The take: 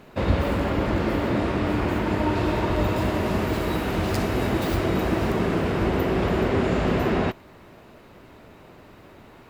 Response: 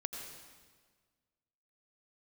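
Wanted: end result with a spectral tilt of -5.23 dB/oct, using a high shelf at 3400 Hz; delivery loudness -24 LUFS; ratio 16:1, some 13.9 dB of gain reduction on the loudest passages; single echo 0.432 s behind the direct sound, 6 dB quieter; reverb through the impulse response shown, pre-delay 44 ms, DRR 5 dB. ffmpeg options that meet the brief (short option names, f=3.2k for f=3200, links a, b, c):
-filter_complex "[0:a]highshelf=f=3.4k:g=6,acompressor=threshold=-28dB:ratio=16,aecho=1:1:432:0.501,asplit=2[a][b];[1:a]atrim=start_sample=2205,adelay=44[c];[b][c]afir=irnorm=-1:irlink=0,volume=-5dB[d];[a][d]amix=inputs=2:normalize=0,volume=7dB"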